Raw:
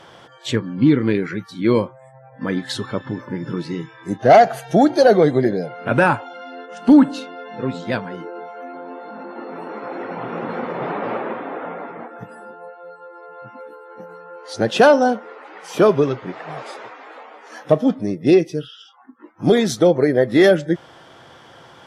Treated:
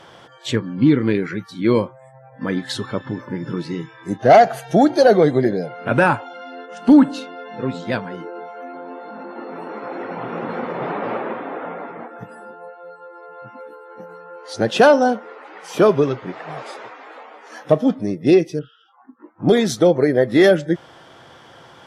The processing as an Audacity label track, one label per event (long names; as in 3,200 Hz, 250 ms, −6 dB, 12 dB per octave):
18.590000	19.490000	low-pass filter 1,400 Hz